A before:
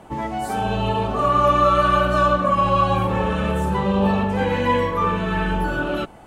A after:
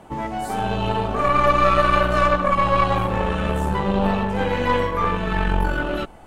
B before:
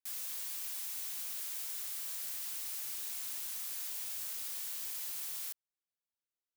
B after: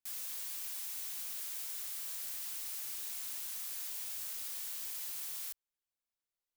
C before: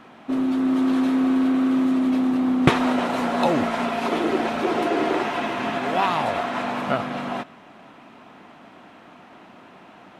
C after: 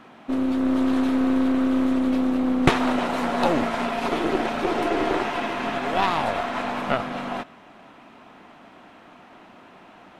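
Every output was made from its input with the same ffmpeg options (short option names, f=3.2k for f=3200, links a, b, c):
-af "asubboost=boost=2.5:cutoff=66,aeval=exprs='0.944*(cos(1*acos(clip(val(0)/0.944,-1,1)))-cos(1*PI/2))+0.133*(cos(4*acos(clip(val(0)/0.944,-1,1)))-cos(4*PI/2))+0.0335*(cos(8*acos(clip(val(0)/0.944,-1,1)))-cos(8*PI/2))':c=same,volume=-1dB"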